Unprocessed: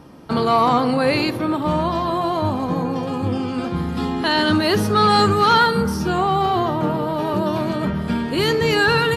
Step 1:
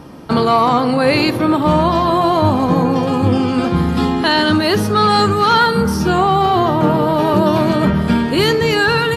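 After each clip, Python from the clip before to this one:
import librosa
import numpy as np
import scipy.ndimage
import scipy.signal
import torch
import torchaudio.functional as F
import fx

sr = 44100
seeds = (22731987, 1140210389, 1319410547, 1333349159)

y = fx.rider(x, sr, range_db=3, speed_s=0.5)
y = y * librosa.db_to_amplitude(5.0)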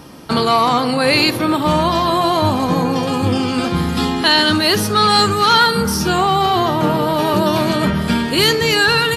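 y = fx.high_shelf(x, sr, hz=2200.0, db=11.0)
y = y * librosa.db_to_amplitude(-3.0)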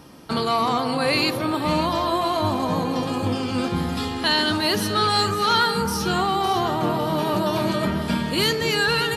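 y = fx.echo_alternate(x, sr, ms=279, hz=1000.0, feedback_pct=51, wet_db=-6.0)
y = y * librosa.db_to_amplitude(-7.5)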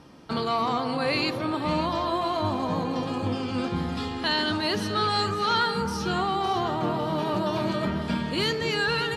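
y = fx.air_absorb(x, sr, metres=64.0)
y = y * librosa.db_to_amplitude(-4.0)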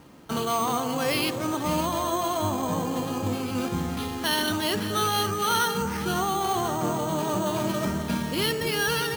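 y = np.repeat(x[::6], 6)[:len(x)]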